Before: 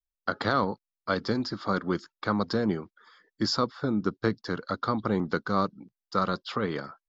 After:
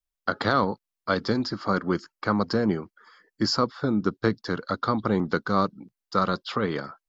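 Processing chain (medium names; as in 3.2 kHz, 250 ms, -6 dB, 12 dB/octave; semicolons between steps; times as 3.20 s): 1.52–3.66 s: band-stop 3.6 kHz, Q 5; trim +3 dB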